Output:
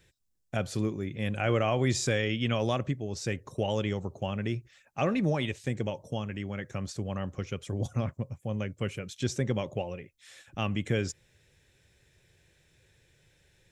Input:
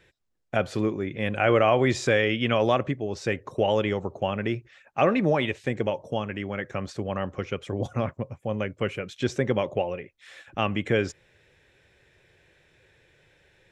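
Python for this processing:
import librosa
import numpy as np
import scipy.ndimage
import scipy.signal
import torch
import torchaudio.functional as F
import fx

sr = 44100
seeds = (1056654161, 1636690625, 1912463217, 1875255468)

y = fx.bass_treble(x, sr, bass_db=9, treble_db=14)
y = F.gain(torch.from_numpy(y), -8.5).numpy()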